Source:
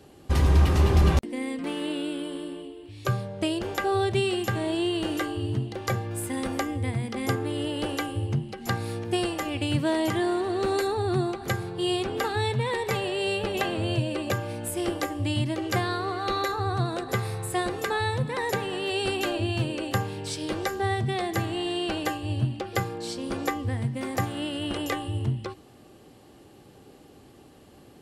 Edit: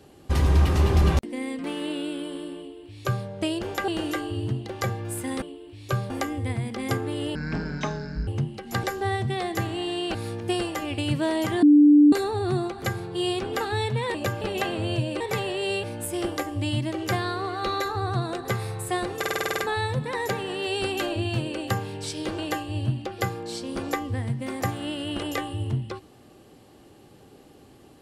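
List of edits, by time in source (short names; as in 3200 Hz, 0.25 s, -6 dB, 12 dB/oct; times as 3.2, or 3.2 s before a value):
2.58–3.26 copy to 6.48
3.88–4.94 cut
7.73–8.22 speed 53%
10.26–10.76 bleep 294 Hz -10.5 dBFS
12.78–13.41 swap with 14.2–14.47
17.82 stutter 0.05 s, 9 plays
20.62–21.93 move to 8.78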